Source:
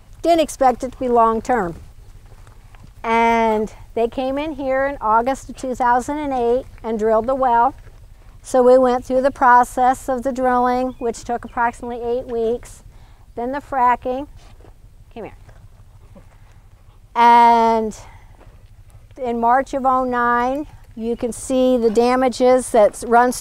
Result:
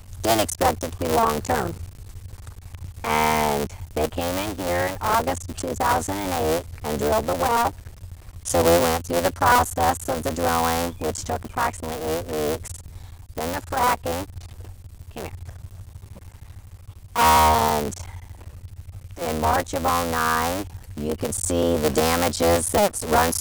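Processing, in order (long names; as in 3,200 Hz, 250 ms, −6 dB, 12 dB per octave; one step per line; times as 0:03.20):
sub-harmonics by changed cycles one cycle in 3, muted
parametric band 87 Hz +14 dB 0.63 octaves
in parallel at −1 dB: downward compressor, threshold −27 dBFS, peak gain reduction 18 dB
on the sum: high-shelf EQ 4,100 Hz +10.5 dB
level −6 dB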